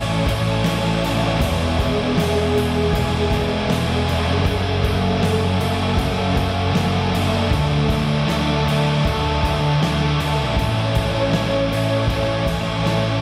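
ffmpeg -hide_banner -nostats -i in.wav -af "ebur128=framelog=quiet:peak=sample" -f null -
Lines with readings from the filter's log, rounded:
Integrated loudness:
  I:         -19.2 LUFS
  Threshold: -29.2 LUFS
Loudness range:
  LRA:         0.7 LU
  Threshold: -39.1 LUFS
  LRA low:   -19.4 LUFS
  LRA high:  -18.8 LUFS
Sample peak:
  Peak:       -6.8 dBFS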